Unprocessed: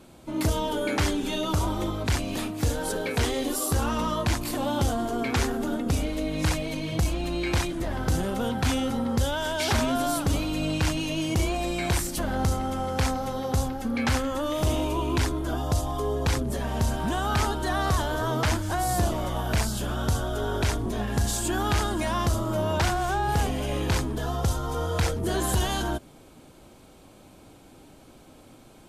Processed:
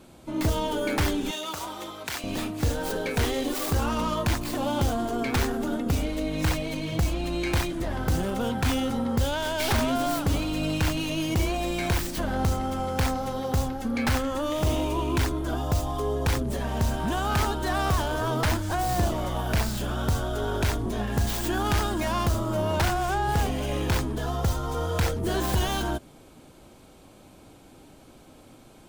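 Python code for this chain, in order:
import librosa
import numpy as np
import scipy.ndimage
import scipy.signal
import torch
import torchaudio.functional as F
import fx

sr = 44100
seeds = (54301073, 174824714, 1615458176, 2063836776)

y = fx.tracing_dist(x, sr, depth_ms=0.17)
y = fx.highpass(y, sr, hz=1100.0, slope=6, at=(1.31, 2.24))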